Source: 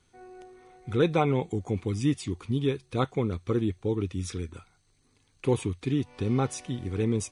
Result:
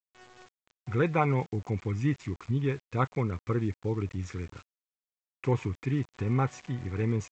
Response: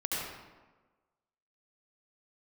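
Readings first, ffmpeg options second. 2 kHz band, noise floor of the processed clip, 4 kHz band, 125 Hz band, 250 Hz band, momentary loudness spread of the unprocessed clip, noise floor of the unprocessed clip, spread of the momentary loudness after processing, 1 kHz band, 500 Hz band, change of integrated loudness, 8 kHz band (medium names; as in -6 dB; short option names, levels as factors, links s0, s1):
+2.0 dB, under -85 dBFS, -9.5 dB, +0.5 dB, -3.5 dB, 9 LU, -67 dBFS, 9 LU, +0.5 dB, -4.0 dB, -1.5 dB, under -10 dB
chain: -af "equalizer=f=125:t=o:w=1:g=7,equalizer=f=1000:t=o:w=1:g=6,equalizer=f=2000:t=o:w=1:g=11,equalizer=f=4000:t=o:w=1:g=-11,aresample=16000,aeval=exprs='val(0)*gte(abs(val(0)),0.00891)':c=same,aresample=44100,volume=0.531"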